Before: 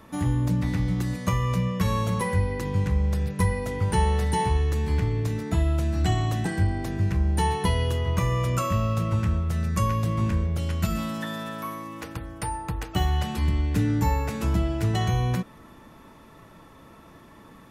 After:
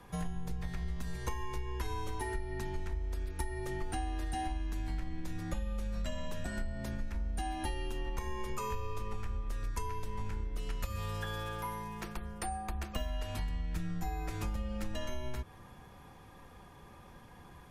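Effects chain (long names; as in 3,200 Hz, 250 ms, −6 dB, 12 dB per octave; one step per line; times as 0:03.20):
frequency shifter −120 Hz
downward compressor, threshold −28 dBFS, peak gain reduction 11.5 dB
level −4.5 dB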